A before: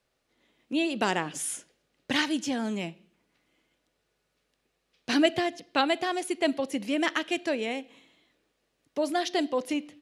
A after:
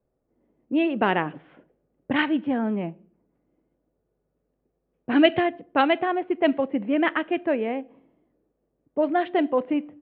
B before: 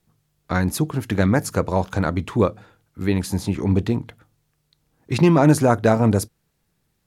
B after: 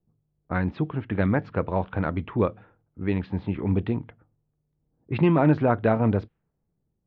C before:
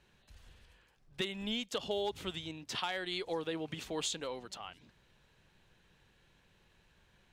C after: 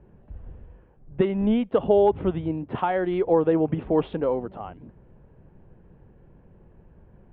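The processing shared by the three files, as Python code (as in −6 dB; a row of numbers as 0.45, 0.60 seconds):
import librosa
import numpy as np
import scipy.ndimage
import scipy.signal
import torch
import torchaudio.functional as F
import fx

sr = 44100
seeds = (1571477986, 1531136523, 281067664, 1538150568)

y = fx.env_lowpass(x, sr, base_hz=530.0, full_db=-15.0)
y = scipy.signal.sosfilt(scipy.signal.butter(6, 3300.0, 'lowpass', fs=sr, output='sos'), y)
y = y * 10.0 ** (-26 / 20.0) / np.sqrt(np.mean(np.square(y)))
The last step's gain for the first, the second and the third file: +5.5, −5.0, +18.0 decibels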